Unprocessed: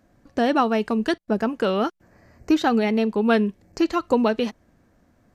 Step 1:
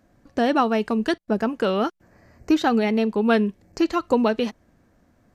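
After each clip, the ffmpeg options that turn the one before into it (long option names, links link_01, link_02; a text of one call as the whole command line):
ffmpeg -i in.wav -af anull out.wav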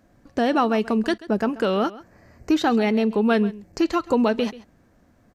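ffmpeg -i in.wav -filter_complex "[0:a]asplit=2[link_01][link_02];[link_02]alimiter=limit=-16dB:level=0:latency=1:release=34,volume=1.5dB[link_03];[link_01][link_03]amix=inputs=2:normalize=0,aecho=1:1:135:0.119,volume=-5dB" out.wav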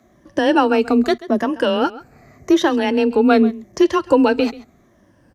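ffmpeg -i in.wav -af "afftfilt=real='re*pow(10,10/40*sin(2*PI*(1.2*log(max(b,1)*sr/1024/100)/log(2)-(-0.84)*(pts-256)/sr)))':imag='im*pow(10,10/40*sin(2*PI*(1.2*log(max(b,1)*sr/1024/100)/log(2)-(-0.84)*(pts-256)/sr)))':win_size=1024:overlap=0.75,afreqshift=22,volume=3.5dB" out.wav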